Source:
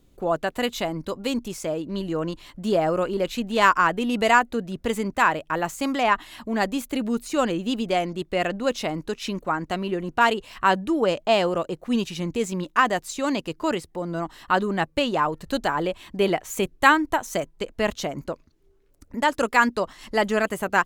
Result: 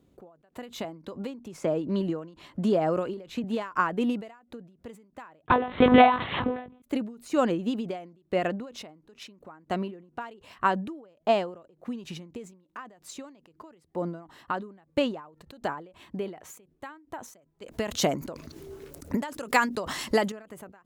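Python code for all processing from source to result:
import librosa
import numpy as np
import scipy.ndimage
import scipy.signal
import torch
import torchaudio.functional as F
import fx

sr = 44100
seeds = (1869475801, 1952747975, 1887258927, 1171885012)

y = fx.chain(x, sr, fx.high_shelf(hz=12000.0, db=-8.0),
    fx.band_squash(depth_pct=70), at=(0.84, 3.44))
y = fx.chain(y, sr, fx.leveller(passes=5),
    fx.doubler(ms=20.0, db=-3.5),
    fx.lpc_monotone(seeds[0], pitch_hz=250.0, order=10), at=(5.46, 6.82))
y = fx.chain(y, sr, fx.high_shelf(hz=3500.0, db=11.5),
    fx.env_flatten(amount_pct=50), at=(17.62, 20.32))
y = scipy.signal.sosfilt(scipy.signal.butter(2, 91.0, 'highpass', fs=sr, output='sos'), y)
y = fx.high_shelf(y, sr, hz=2000.0, db=-10.0)
y = fx.end_taper(y, sr, db_per_s=110.0)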